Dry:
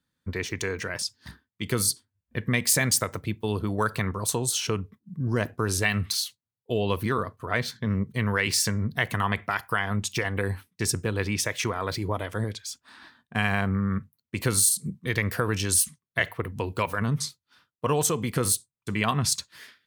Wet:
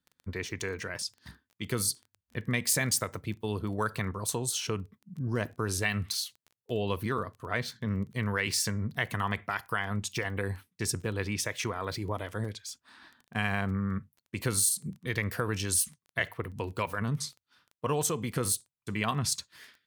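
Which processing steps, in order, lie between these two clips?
surface crackle 13 per second −35 dBFS
level −5 dB

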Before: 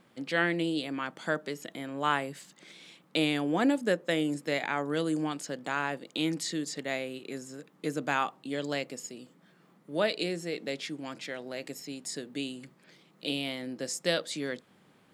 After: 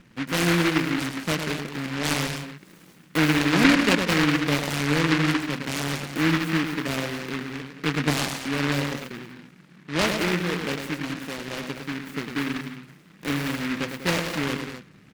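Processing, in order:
spectral tilt −4.5 dB per octave
on a send: loudspeakers that aren't time-aligned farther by 36 metres −6 dB, 67 metres −11 dB, 86 metres −12 dB
on the sum: short delay modulated by noise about 1,700 Hz, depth 0.3 ms

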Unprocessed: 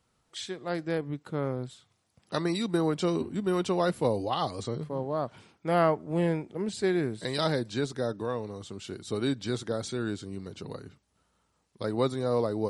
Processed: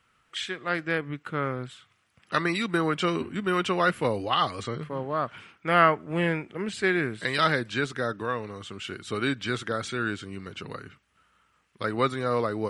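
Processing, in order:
de-essing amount 60%
flat-topped bell 1,900 Hz +12 dB

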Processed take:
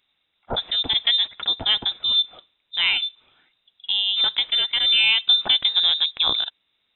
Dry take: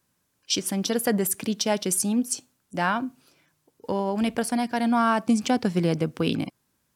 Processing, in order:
voice inversion scrambler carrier 3,800 Hz
level +3.5 dB

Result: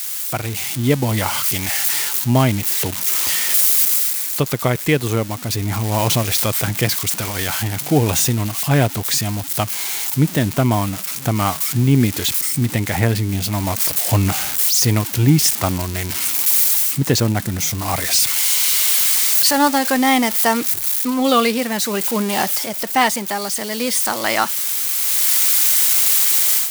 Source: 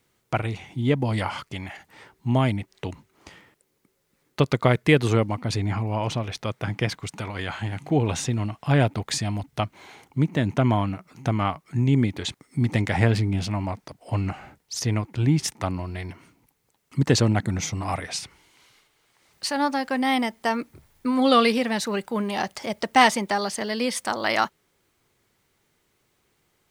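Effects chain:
spike at every zero crossing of −18.5 dBFS
automatic gain control
level −1 dB

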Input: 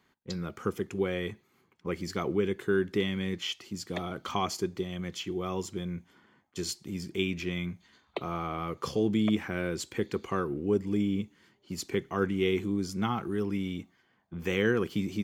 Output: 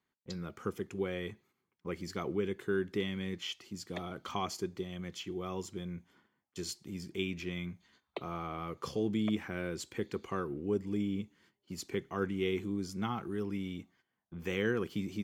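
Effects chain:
noise gate −60 dBFS, range −10 dB
level −5.5 dB

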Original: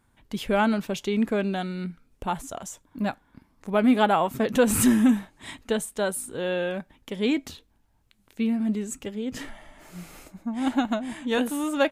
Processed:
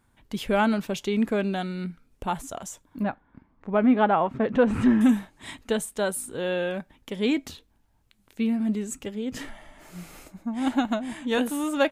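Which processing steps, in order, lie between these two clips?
0:03.03–0:05.01: low-pass filter 2,000 Hz 12 dB per octave

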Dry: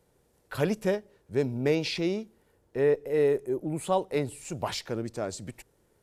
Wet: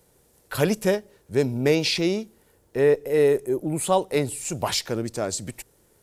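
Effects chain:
high-shelf EQ 4,800 Hz +9.5 dB
level +5 dB

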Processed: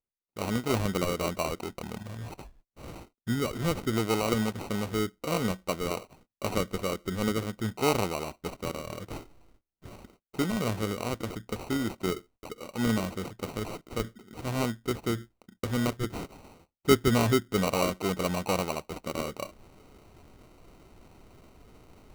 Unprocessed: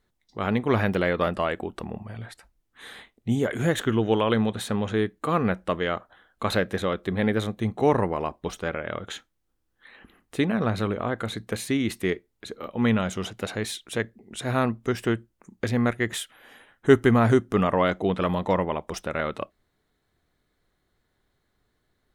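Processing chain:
reversed playback
upward compression, threshold −28 dBFS
reversed playback
noise gate −51 dBFS, range −29 dB
sample-rate reduction 1,700 Hz, jitter 0%
level −5 dB

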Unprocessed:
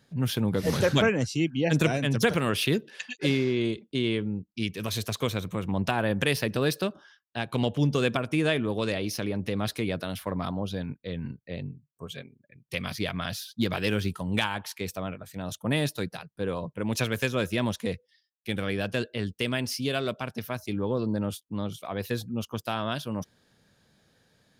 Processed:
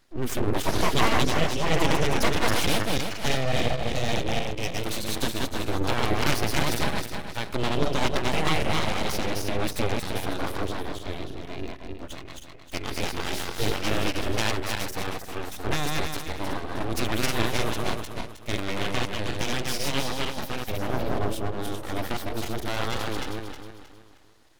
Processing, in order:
feedback delay that plays each chunk backwards 157 ms, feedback 59%, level −1 dB
0:04.27–0:04.78: EQ curve with evenly spaced ripples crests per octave 0.71, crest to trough 8 dB
full-wave rectification
level +1.5 dB

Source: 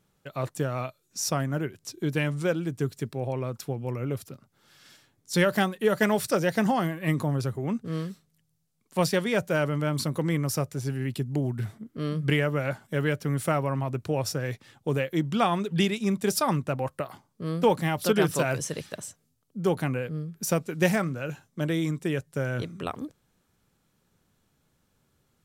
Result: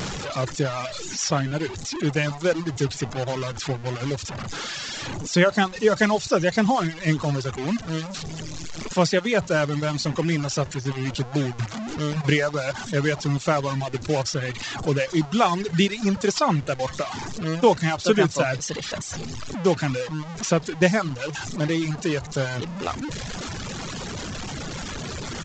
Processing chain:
linear delta modulator 64 kbit/s, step −27.5 dBFS
reverb reduction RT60 1.2 s
downsampling to 16,000 Hz
level +5 dB

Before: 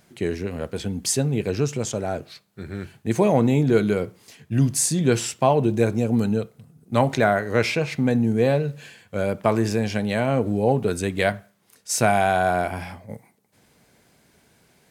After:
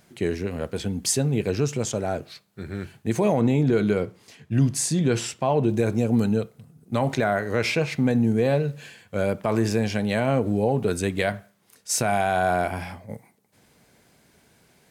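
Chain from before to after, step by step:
0:03.41–0:05.69: high-shelf EQ 8,900 Hz −10 dB
brickwall limiter −11.5 dBFS, peak gain reduction 7.5 dB

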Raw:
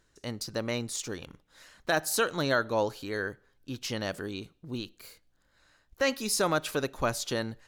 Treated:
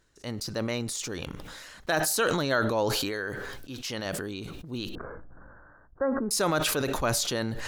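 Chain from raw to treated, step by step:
0:02.95–0:04.06: low-shelf EQ 280 Hz −6 dB
0:04.95–0:06.31: Butterworth low-pass 1,600 Hz 72 dB per octave
level that may fall only so fast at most 23 dB per second

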